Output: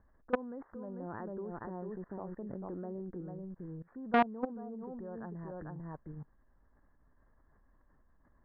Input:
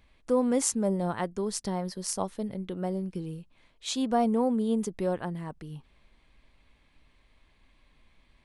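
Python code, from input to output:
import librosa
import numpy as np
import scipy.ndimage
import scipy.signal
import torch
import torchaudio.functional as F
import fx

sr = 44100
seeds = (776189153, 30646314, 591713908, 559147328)

y = x + 10.0 ** (-7.5 / 20.0) * np.pad(x, (int(445 * sr / 1000.0), 0))[:len(x)]
y = fx.rider(y, sr, range_db=5, speed_s=2.0)
y = scipy.signal.sosfilt(scipy.signal.butter(16, 1800.0, 'lowpass', fs=sr, output='sos'), y)
y = fx.level_steps(y, sr, step_db=23)
y = fx.peak_eq(y, sr, hz=340.0, db=6.0, octaves=0.63, at=(0.99, 3.21))
y = fx.transformer_sat(y, sr, knee_hz=960.0)
y = y * librosa.db_to_amplitude(3.0)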